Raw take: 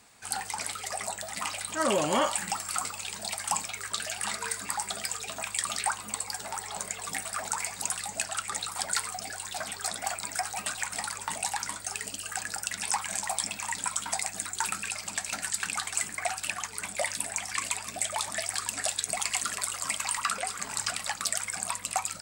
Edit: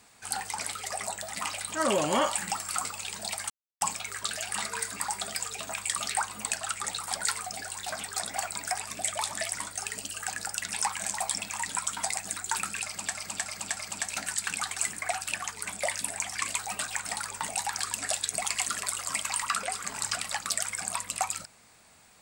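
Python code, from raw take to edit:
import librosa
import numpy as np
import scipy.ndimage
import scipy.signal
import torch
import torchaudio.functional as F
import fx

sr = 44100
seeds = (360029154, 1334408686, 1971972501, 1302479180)

y = fx.edit(x, sr, fx.insert_silence(at_s=3.5, length_s=0.31),
    fx.cut(start_s=6.2, length_s=1.99),
    fx.swap(start_s=10.46, length_s=1.18, other_s=17.75, other_length_s=0.77),
    fx.repeat(start_s=14.93, length_s=0.31, count=4), tone=tone)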